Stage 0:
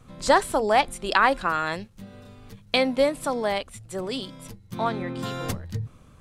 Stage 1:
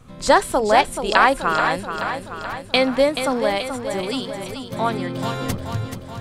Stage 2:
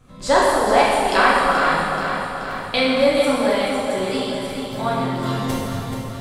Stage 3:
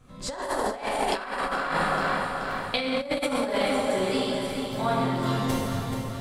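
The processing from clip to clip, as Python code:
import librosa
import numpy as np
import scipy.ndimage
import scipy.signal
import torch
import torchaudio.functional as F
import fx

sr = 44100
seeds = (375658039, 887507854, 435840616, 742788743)

y1 = fx.echo_feedback(x, sr, ms=430, feedback_pct=59, wet_db=-8.0)
y1 = y1 * 10.0 ** (4.0 / 20.0)
y2 = fx.rev_plate(y1, sr, seeds[0], rt60_s=2.1, hf_ratio=0.85, predelay_ms=0, drr_db=-6.5)
y2 = y2 * 10.0 ** (-6.0 / 20.0)
y3 = fx.over_compress(y2, sr, threshold_db=-20.0, ratio=-0.5)
y3 = y3 * 10.0 ** (-5.5 / 20.0)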